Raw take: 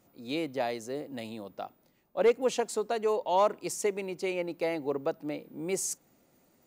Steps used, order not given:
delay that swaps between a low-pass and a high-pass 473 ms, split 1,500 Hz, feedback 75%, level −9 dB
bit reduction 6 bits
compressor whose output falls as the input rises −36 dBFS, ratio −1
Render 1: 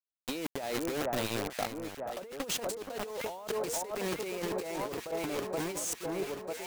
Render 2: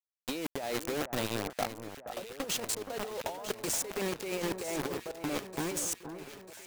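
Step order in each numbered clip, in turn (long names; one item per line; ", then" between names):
bit reduction, then delay that swaps between a low-pass and a high-pass, then compressor whose output falls as the input rises
bit reduction, then compressor whose output falls as the input rises, then delay that swaps between a low-pass and a high-pass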